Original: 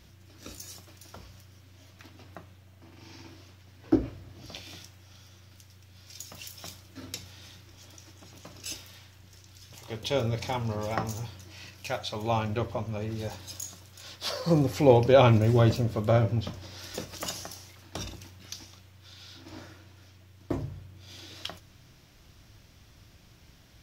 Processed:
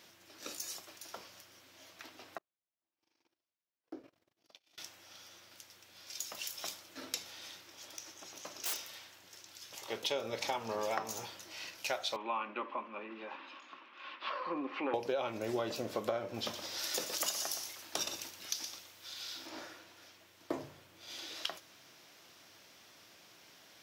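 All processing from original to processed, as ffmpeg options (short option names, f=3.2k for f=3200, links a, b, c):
-filter_complex "[0:a]asettb=1/sr,asplit=3[a][b][c];[a]atrim=end=2.384[d];[b]atrim=start=2.38:end=4.78,asetpts=PTS-STARTPTS,afade=t=in:d=0.004:c=qsin,afade=t=out:st=2.396:d=0.004:c=qsin,acompressor=threshold=-45dB:ratio=3:attack=3.2:release=140:knee=1:detection=peak,agate=range=-42dB:threshold=-46dB:ratio=16:release=100:detection=peak[e];[c]atrim=start=4.776[f];[d][e]acrossfade=d=0.004:c1=hsin:c2=qsin[g];[g][f]acrossfade=d=0.004:c1=qsin:c2=hsin,asettb=1/sr,asplit=3[h][i][j];[h]atrim=end=7.954[k];[i]atrim=start=7.95:end=8.86,asetpts=PTS-STARTPTS,afade=t=in:d=0.004:c=qsin,afade=t=out:st=0.906:d=0.004:c=qsin,equalizer=f=6.1k:t=o:w=0.25:g=6,aeval=exprs='(mod(37.6*val(0)+1,2)-1)/37.6':c=same[l];[j]atrim=start=8.856[m];[k][l]acrossfade=d=0.004:c1=hsin:c2=qsin[n];[n][m]acrossfade=d=0.004:c1=qsin:c2=hsin,asettb=1/sr,asplit=3[o][p][q];[o]atrim=end=12.164[r];[p]atrim=start=12.16:end=14.94,asetpts=PTS-STARTPTS,afade=t=in:d=0.004:c=qsin,afade=t=out:st=2.776:d=0.004:c=qsin,acompressor=threshold=-43dB:ratio=1.5:attack=3.2:release=140:knee=1:detection=peak,asoftclip=type=hard:threshold=-23.5dB,highpass=f=240:w=0.5412,highpass=f=240:w=1.3066,equalizer=f=250:t=q:w=4:g=8,equalizer=f=460:t=q:w=4:g=-8,equalizer=f=690:t=q:w=4:g=-8,equalizer=f=1.1k:t=q:w=4:g=10,equalizer=f=2.6k:t=q:w=4:g=6,lowpass=f=2.8k:w=0.5412,lowpass=f=2.8k:w=1.3066[s];[q]atrim=start=14.936[t];[r][s]acrossfade=d=0.004:c1=hsin:c2=qsin[u];[u][t]acrossfade=d=0.004:c1=qsin:c2=hsin,asettb=1/sr,asplit=3[v][w][x];[v]atrim=end=16.344[y];[w]atrim=start=16.34:end=19.47,asetpts=PTS-STARTPTS,afade=t=in:d=0.004:c=qsin,afade=t=out:st=3.126:d=0.004:c=qsin,highshelf=f=4.6k:g=7.5,aecho=1:1:119:0.282,atrim=end_sample=138033[z];[x]atrim=start=19.466[aa];[y][z]acrossfade=d=0.004:c1=hsin:c2=qsin[ab];[ab][aa]acrossfade=d=0.004:c1=qsin:c2=hsin,highpass=410,acompressor=threshold=-33dB:ratio=20,volume=2dB"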